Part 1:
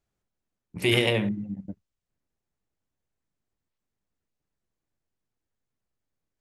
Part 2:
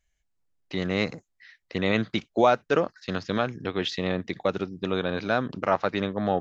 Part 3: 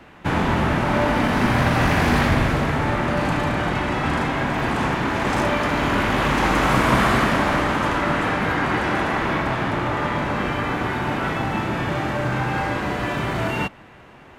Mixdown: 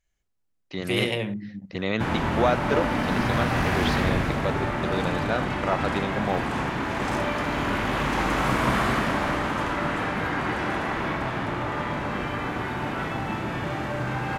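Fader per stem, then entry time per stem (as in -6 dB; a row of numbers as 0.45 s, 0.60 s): -3.5 dB, -2.5 dB, -5.5 dB; 0.05 s, 0.00 s, 1.75 s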